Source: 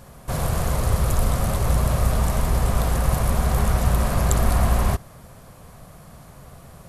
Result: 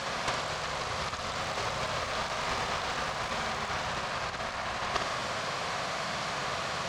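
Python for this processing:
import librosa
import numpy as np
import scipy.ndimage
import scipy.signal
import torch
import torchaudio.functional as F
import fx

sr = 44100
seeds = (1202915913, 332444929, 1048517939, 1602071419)

y = fx.weighting(x, sr, curve='ITU-R 468')
y = fx.over_compress(y, sr, threshold_db=-33.0, ratio=-0.5)
y = fx.quant_companded(y, sr, bits=4, at=(1.35, 3.87))
y = fx.air_absorb(y, sr, metres=200.0)
y = fx.room_flutter(y, sr, wall_m=10.1, rt60_s=0.56)
y = y * 10.0 ** (7.0 / 20.0)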